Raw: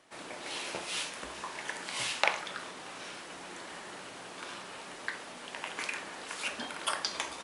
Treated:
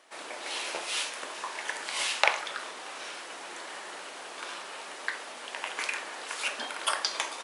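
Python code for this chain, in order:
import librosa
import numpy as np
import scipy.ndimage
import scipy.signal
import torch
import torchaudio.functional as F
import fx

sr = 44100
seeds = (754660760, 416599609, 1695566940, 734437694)

y = scipy.signal.sosfilt(scipy.signal.butter(2, 420.0, 'highpass', fs=sr, output='sos'), x)
y = y * 10.0 ** (4.0 / 20.0)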